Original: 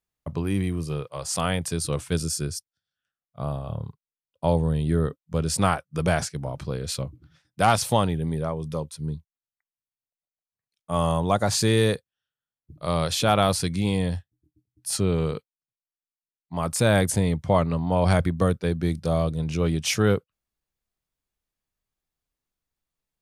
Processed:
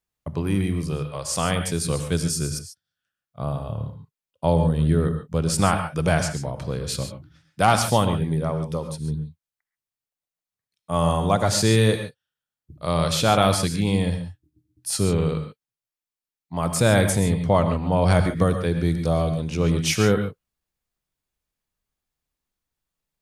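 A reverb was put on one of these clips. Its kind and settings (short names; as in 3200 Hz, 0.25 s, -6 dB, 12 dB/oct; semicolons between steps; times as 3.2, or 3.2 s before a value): non-linear reverb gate 0.16 s rising, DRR 7 dB; gain +1.5 dB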